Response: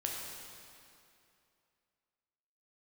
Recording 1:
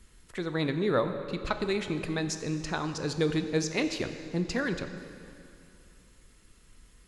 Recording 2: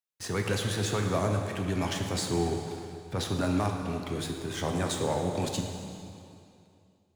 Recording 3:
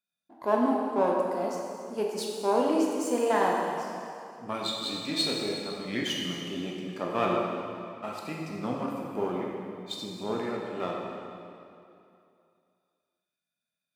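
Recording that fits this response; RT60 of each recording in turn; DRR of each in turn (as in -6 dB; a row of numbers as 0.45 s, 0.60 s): 3; 2.6 s, 2.6 s, 2.6 s; 7.5 dB, 2.5 dB, -2.0 dB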